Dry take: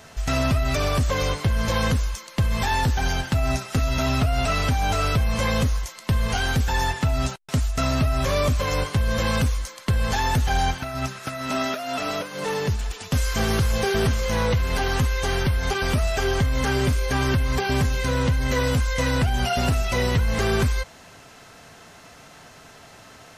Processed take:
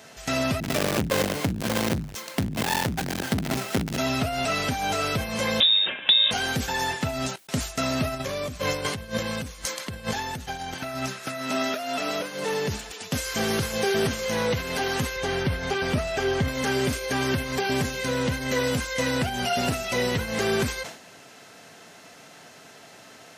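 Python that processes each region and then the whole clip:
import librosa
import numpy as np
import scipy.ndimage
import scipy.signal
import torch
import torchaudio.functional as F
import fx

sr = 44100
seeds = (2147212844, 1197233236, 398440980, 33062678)

y = fx.chain(x, sr, fx.halfwave_hold(),
    fx.transformer_sat(knee_hz=120.0), at=(0.6, 3.98))
y = fx.chain(y, sr, fx.freq_invert(carrier_hz=3700),
    fx.band_squash(depth_pct=100), at=(5.6, 6.31))
y = fx.chain(y, sr, fx.low_shelf(hz=110.0, db=7.0),
    fx.over_compress(threshold_db=-25.0, ratio=-1.0), at=(8.14, 10.74))
y = fx.chain(y, sr, fx.lowpass(hz=4000.0, slope=6),
    fx.low_shelf(hz=120.0, db=7.5), at=(15.16, 16.48))
y = scipy.signal.sosfilt(scipy.signal.butter(2, 180.0, 'highpass', fs=sr, output='sos'), y)
y = fx.peak_eq(y, sr, hz=1100.0, db=-4.5, octaves=0.71)
y = fx.sustainer(y, sr, db_per_s=100.0)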